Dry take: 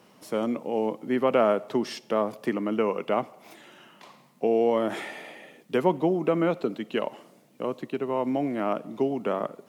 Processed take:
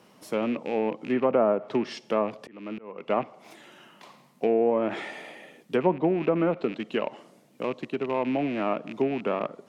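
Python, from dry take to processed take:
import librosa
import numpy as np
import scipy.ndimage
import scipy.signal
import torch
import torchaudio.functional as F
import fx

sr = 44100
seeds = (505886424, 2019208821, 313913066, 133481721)

y = fx.rattle_buzz(x, sr, strikes_db=-38.0, level_db=-28.0)
y = fx.env_lowpass_down(y, sr, base_hz=1100.0, full_db=-18.0)
y = fx.auto_swell(y, sr, attack_ms=537.0, at=(2.09, 3.1))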